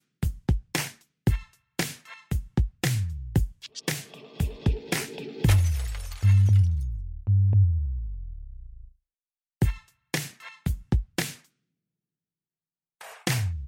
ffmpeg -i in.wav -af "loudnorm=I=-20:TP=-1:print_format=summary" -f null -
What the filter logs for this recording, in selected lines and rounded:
Input Integrated:    -27.5 LUFS
Input True Peak:     -10.2 dBTP
Input LRA:             8.1 LU
Input Threshold:     -38.2 LUFS